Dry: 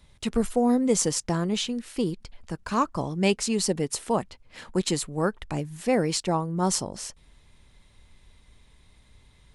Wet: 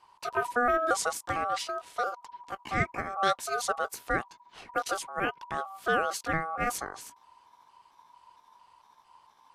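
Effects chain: trilling pitch shifter +4 st, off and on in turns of 0.226 s; high shelf 7300 Hz -8 dB; notch 1000 Hz, Q 20; ring modulator 970 Hz; gain -1 dB

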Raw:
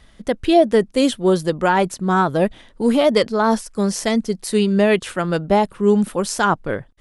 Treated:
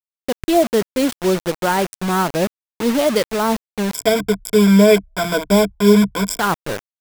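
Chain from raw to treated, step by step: Wiener smoothing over 15 samples; high shelf 9000 Hz +11 dB; bit-crush 4-bit; 3.94–6.4 ripple EQ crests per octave 1.7, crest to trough 18 dB; gain -1.5 dB

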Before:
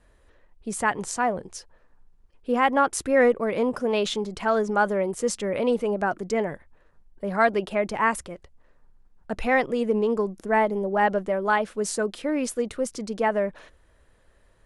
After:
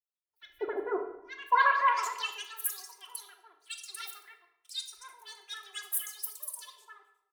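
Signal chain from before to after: bin magnitudes rounded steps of 15 dB; high shelf 6200 Hz +9.5 dB; gate with hold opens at -47 dBFS; comb 5.9 ms, depth 82%; bands offset in time highs, lows 0.55 s, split 1000 Hz; band-pass sweep 230 Hz -> 4700 Hz, 2.35–5.2; speed mistake 7.5 ips tape played at 15 ips; shoebox room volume 630 m³, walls mixed, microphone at 0.9 m; three-band expander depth 40%; gain -1 dB

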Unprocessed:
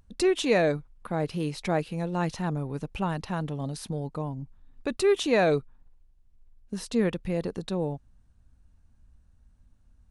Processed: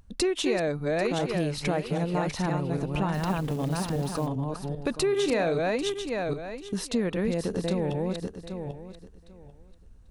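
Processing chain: regenerating reverse delay 0.396 s, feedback 41%, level -4 dB; compressor 6:1, threshold -27 dBFS, peak gain reduction 10.5 dB; 3.14–4.27 companded quantiser 6-bit; 5.09–5.58 doubler 35 ms -8.5 dB; gain +4 dB

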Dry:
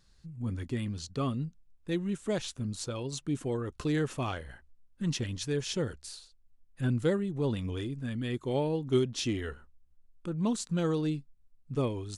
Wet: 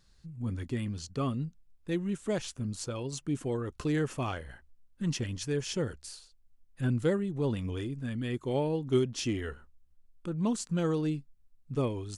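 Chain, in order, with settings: dynamic EQ 3800 Hz, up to -7 dB, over -60 dBFS, Q 5.4

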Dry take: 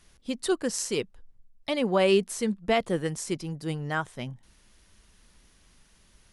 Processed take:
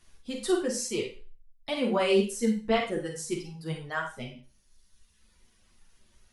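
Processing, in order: reverb removal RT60 1.7 s; Schroeder reverb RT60 0.36 s, combs from 33 ms, DRR 2.5 dB; chorus voices 6, 0.95 Hz, delay 11 ms, depth 3 ms

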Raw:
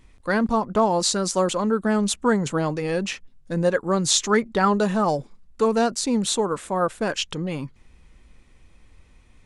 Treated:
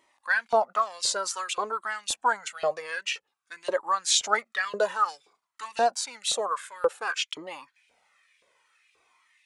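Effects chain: LFO high-pass saw up 1.9 Hz 480–2900 Hz; cascading flanger falling 0.54 Hz

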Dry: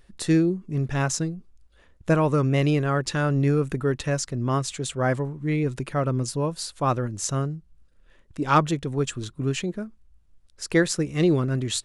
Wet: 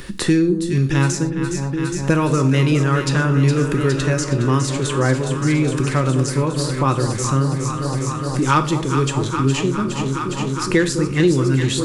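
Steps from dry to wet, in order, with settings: bell 680 Hz -12 dB 0.36 oct; echo with dull and thin repeats by turns 0.206 s, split 950 Hz, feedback 88%, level -10 dB; non-linear reverb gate 0.14 s falling, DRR 7.5 dB; three-band squash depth 70%; gain +5 dB

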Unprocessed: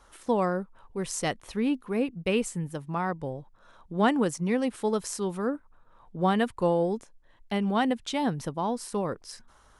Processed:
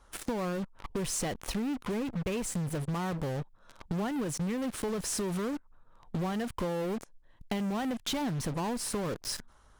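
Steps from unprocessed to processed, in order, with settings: in parallel at -10 dB: fuzz box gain 51 dB, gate -46 dBFS; on the sum: low shelf 250 Hz +5.5 dB; compressor 6:1, threshold -26 dBFS, peak gain reduction 12.5 dB; gain -5 dB

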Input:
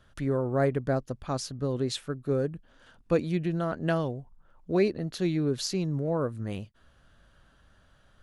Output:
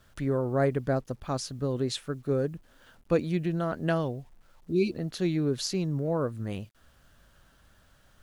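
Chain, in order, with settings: bit-crush 11-bit; spectral repair 4.72–4.92, 390–2200 Hz before

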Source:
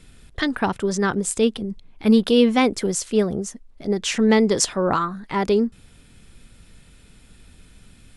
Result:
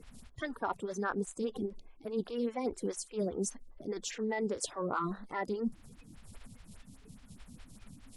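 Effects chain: bin magnitudes rounded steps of 30 dB; reverse; compressor 12:1, threshold -29 dBFS, peak gain reduction 18.5 dB; reverse; photocell phaser 4.9 Hz

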